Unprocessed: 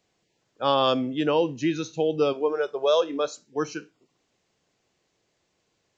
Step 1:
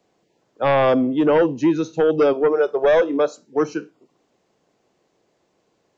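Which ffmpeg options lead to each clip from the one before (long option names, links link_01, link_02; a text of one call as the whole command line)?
ffmpeg -i in.wav -filter_complex "[0:a]acrossover=split=170|1200[link_01][link_02][link_03];[link_02]aeval=exprs='0.266*sin(PI/2*2*val(0)/0.266)':channel_layout=same[link_04];[link_03]alimiter=level_in=3.5dB:limit=-24dB:level=0:latency=1:release=338,volume=-3.5dB[link_05];[link_01][link_04][link_05]amix=inputs=3:normalize=0" out.wav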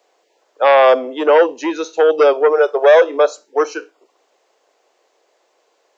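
ffmpeg -i in.wav -af "highpass=frequency=450:width=0.5412,highpass=frequency=450:width=1.3066,volume=7.5dB" out.wav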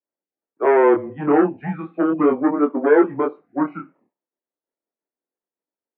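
ffmpeg -i in.wav -af "agate=range=-33dB:threshold=-44dB:ratio=3:detection=peak,flanger=delay=20:depth=7.2:speed=0.35,highpass=frequency=300:width_type=q:width=0.5412,highpass=frequency=300:width_type=q:width=1.307,lowpass=frequency=2200:width_type=q:width=0.5176,lowpass=frequency=2200:width_type=q:width=0.7071,lowpass=frequency=2200:width_type=q:width=1.932,afreqshift=-150,volume=-2dB" out.wav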